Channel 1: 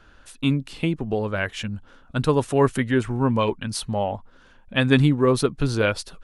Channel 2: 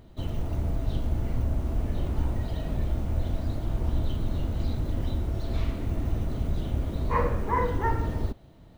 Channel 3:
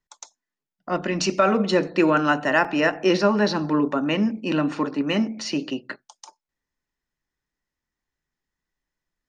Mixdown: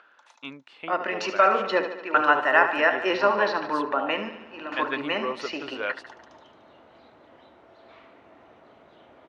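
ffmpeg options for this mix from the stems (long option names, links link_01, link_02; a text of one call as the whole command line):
ffmpeg -i stem1.wav -i stem2.wav -i stem3.wav -filter_complex "[0:a]volume=-4.5dB,asplit=2[link_01][link_02];[1:a]adelay=2350,volume=-6dB[link_03];[2:a]volume=3dB,asplit=2[link_04][link_05];[link_05]volume=-10.5dB[link_06];[link_02]apad=whole_len=409449[link_07];[link_04][link_07]sidechaingate=range=-33dB:threshold=-46dB:ratio=16:detection=peak[link_08];[link_06]aecho=0:1:74|148|222|296|370|444|518|592|666|740:1|0.6|0.36|0.216|0.13|0.0778|0.0467|0.028|0.0168|0.0101[link_09];[link_01][link_03][link_08][link_09]amix=inputs=4:normalize=0,acompressor=mode=upward:threshold=-46dB:ratio=2.5,acrusher=bits=11:mix=0:aa=0.000001,highpass=670,lowpass=2400" out.wav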